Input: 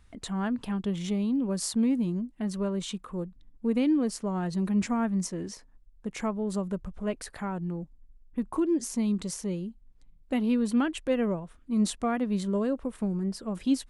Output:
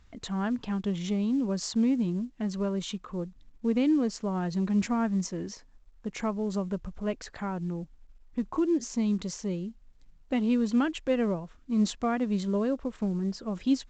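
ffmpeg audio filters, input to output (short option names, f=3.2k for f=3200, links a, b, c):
-ar 16000 -c:a pcm_mulaw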